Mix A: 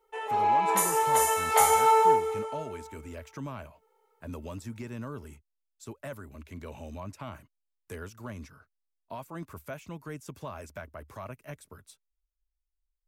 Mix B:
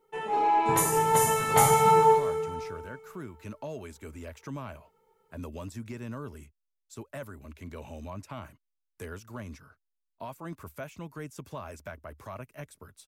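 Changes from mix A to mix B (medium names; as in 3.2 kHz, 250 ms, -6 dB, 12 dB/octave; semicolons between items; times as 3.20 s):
speech: entry +1.10 s; background: remove high-pass 430 Hz 24 dB/octave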